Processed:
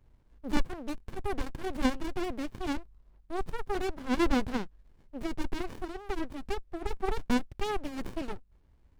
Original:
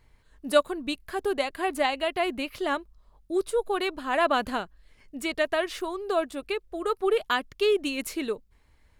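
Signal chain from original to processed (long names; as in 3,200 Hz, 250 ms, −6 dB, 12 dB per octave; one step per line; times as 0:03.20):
windowed peak hold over 65 samples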